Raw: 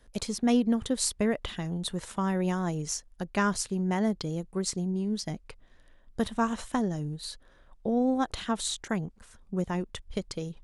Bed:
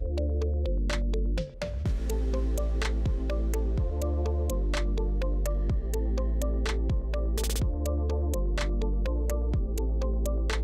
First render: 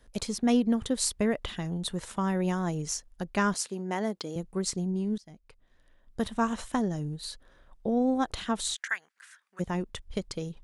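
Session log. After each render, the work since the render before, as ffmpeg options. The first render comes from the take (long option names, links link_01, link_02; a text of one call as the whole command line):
ffmpeg -i in.wav -filter_complex "[0:a]asettb=1/sr,asplit=3[link_01][link_02][link_03];[link_01]atrim=end=3.544[link_04];[link_02]atrim=start=3.54:end=4.36,asetpts=PTS-STARTPTS,afade=type=in:duration=0.004:curve=qsin,afade=type=out:start_time=0.816:duration=0.004:curve=qsin,highpass=280[link_05];[link_03]atrim=start=4.356[link_06];[link_04][link_05]acrossfade=duration=0.004:curve1=hsin:curve2=qsin[link_07];[link_07][link_06]acrossfade=duration=0.004:curve1=qsin:curve2=hsin,asplit=3[link_08][link_09][link_10];[link_08]afade=type=out:start_time=8.74:duration=0.02[link_11];[link_09]highpass=frequency=1700:width_type=q:width=3.5,afade=type=in:start_time=8.74:duration=0.02,afade=type=out:start_time=9.59:duration=0.02[link_12];[link_10]afade=type=in:start_time=9.59:duration=0.02[link_13];[link_11][link_12][link_13]amix=inputs=3:normalize=0,asplit=2[link_14][link_15];[link_14]atrim=end=5.18,asetpts=PTS-STARTPTS,afade=type=out:start_time=5.176:duration=0.004:curve=hsin:silence=0.0749894[link_16];[link_15]atrim=start=5.18,asetpts=PTS-STARTPTS,afade=type=in:duration=1.25:silence=0.0749894[link_17];[link_16][link_17]concat=n=2:v=0:a=1" out.wav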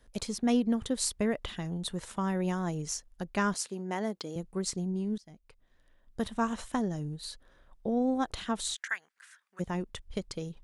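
ffmpeg -i in.wav -af "volume=-2.5dB" out.wav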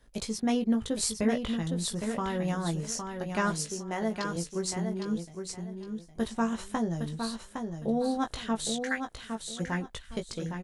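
ffmpeg -i in.wav -filter_complex "[0:a]asplit=2[link_01][link_02];[link_02]adelay=18,volume=-5.5dB[link_03];[link_01][link_03]amix=inputs=2:normalize=0,asplit=2[link_04][link_05];[link_05]aecho=0:1:811|1622|2433:0.501|0.125|0.0313[link_06];[link_04][link_06]amix=inputs=2:normalize=0" out.wav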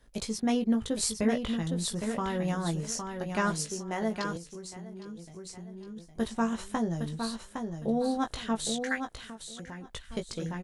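ffmpeg -i in.wav -filter_complex "[0:a]asplit=3[link_01][link_02][link_03];[link_01]afade=type=out:start_time=4.36:duration=0.02[link_04];[link_02]acompressor=threshold=-40dB:ratio=6:attack=3.2:release=140:knee=1:detection=peak,afade=type=in:start_time=4.36:duration=0.02,afade=type=out:start_time=5.96:duration=0.02[link_05];[link_03]afade=type=in:start_time=5.96:duration=0.02[link_06];[link_04][link_05][link_06]amix=inputs=3:normalize=0,asettb=1/sr,asplit=3[link_07][link_08][link_09];[link_07]atrim=end=9.194[link_10];[link_08]atrim=start=9.19:end=9.92,asetpts=PTS-STARTPTS,afade=type=in:duration=0.004:curve=qsin,afade=type=out:start_time=0.726:duration=0.004:curve=qsin,acompressor=threshold=-39dB:ratio=6:attack=3.2:release=140:knee=1:detection=peak[link_11];[link_09]atrim=start=9.916[link_12];[link_10][link_11]acrossfade=duration=0.004:curve1=hsin:curve2=qsin[link_13];[link_13][link_12]acrossfade=duration=0.004:curve1=qsin:curve2=hsin" out.wav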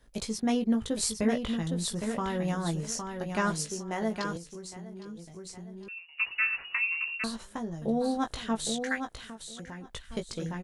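ffmpeg -i in.wav -filter_complex "[0:a]asettb=1/sr,asplit=3[link_01][link_02][link_03];[link_01]atrim=end=5.884[link_04];[link_02]atrim=start=5.88:end=7.24,asetpts=PTS-STARTPTS,afade=type=in:duration=0.004:curve=qsin,afade=type=out:start_time=1.356:duration=0.004:curve=qsin,lowpass=frequency=2500:width_type=q:width=0.5098,lowpass=frequency=2500:width_type=q:width=0.6013,lowpass=frequency=2500:width_type=q:width=0.9,lowpass=frequency=2500:width_type=q:width=2.563,afreqshift=-2900[link_05];[link_03]atrim=start=7.236[link_06];[link_04][link_05]acrossfade=duration=0.004:curve1=hsin:curve2=qsin[link_07];[link_07][link_06]acrossfade=duration=0.004:curve1=qsin:curve2=hsin" out.wav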